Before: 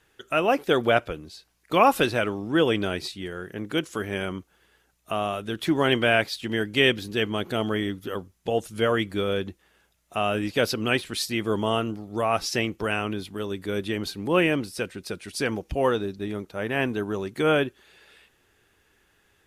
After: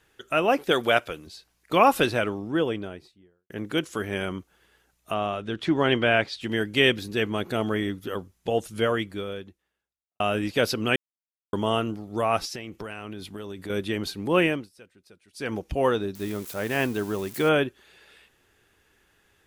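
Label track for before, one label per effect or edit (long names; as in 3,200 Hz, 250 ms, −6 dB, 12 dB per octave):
0.710000	1.270000	spectral tilt +2 dB per octave
2.060000	3.500000	fade out and dull
5.140000	6.410000	high-frequency loss of the air 88 metres
6.970000	8.000000	notch filter 3,100 Hz
8.780000	10.200000	fade out quadratic
10.960000	11.530000	silence
12.450000	13.700000	downward compressor 8 to 1, threshold −32 dBFS
14.450000	15.570000	duck −20.5 dB, fades 0.24 s
16.150000	17.490000	spike at every zero crossing of −30 dBFS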